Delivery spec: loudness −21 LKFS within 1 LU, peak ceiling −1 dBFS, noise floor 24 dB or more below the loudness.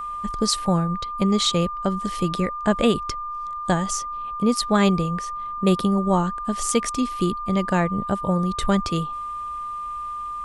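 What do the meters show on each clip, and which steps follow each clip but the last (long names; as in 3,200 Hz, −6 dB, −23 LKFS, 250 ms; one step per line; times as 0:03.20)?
interfering tone 1,200 Hz; level of the tone −28 dBFS; integrated loudness −23.5 LKFS; sample peak −5.5 dBFS; target loudness −21.0 LKFS
→ notch filter 1,200 Hz, Q 30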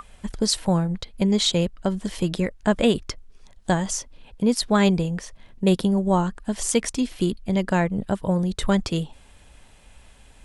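interfering tone none found; integrated loudness −23.5 LKFS; sample peak −6.5 dBFS; target loudness −21.0 LKFS
→ level +2.5 dB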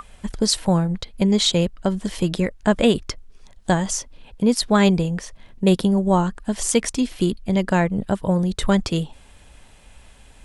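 integrated loudness −21.0 LKFS; sample peak −4.0 dBFS; background noise floor −49 dBFS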